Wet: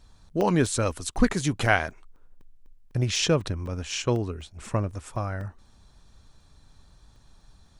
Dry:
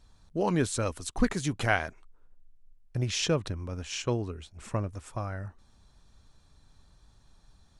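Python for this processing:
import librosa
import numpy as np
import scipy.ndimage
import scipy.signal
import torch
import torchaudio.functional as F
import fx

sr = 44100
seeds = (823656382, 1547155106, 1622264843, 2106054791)

y = fx.buffer_crackle(x, sr, first_s=0.41, period_s=0.25, block=64, kind='zero')
y = y * 10.0 ** (4.5 / 20.0)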